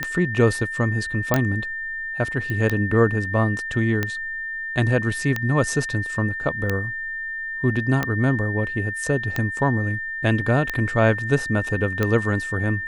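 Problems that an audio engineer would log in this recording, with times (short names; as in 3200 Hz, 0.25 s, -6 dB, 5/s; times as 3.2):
tick 45 rpm -9 dBFS
tone 1800 Hz -27 dBFS
1.34 pop -4 dBFS
2.5 pop -16 dBFS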